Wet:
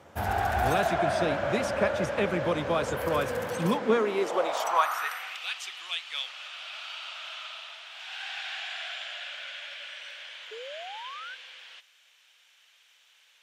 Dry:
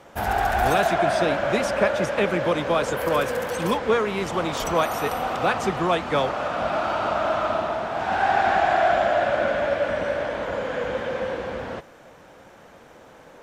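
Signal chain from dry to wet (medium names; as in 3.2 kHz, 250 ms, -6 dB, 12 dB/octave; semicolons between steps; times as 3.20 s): high-pass sweep 81 Hz -> 3 kHz, 3.31–5.46 s; painted sound rise, 10.51–11.35 s, 420–1600 Hz -36 dBFS; trim -5.5 dB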